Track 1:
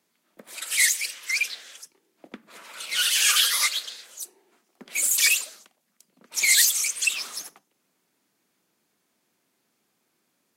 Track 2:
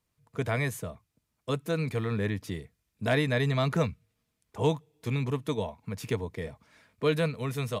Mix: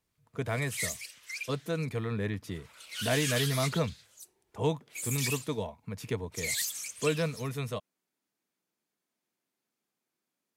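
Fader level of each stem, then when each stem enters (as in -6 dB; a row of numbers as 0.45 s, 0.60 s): -14.0 dB, -3.0 dB; 0.00 s, 0.00 s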